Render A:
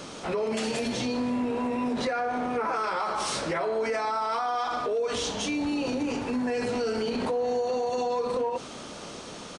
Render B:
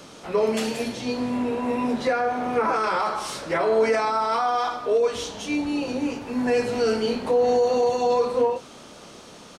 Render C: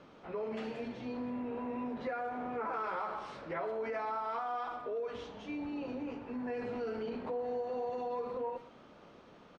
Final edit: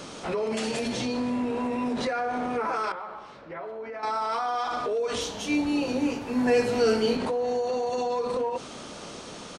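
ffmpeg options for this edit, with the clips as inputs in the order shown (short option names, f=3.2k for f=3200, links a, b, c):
-filter_complex "[0:a]asplit=3[a][b][c];[a]atrim=end=2.922[d];[2:a]atrim=start=2.918:end=4.032[e];[b]atrim=start=4.028:end=5.212[f];[1:a]atrim=start=5.208:end=7.172[g];[c]atrim=start=7.168[h];[d][e]acrossfade=d=0.004:c1=hsin:c2=hsin[i];[i][f]acrossfade=d=0.004:c1=hsin:c2=hsin[j];[j][g]acrossfade=d=0.004:c1=hsin:c2=hsin[k];[k][h]acrossfade=d=0.004:c1=hsin:c2=hsin"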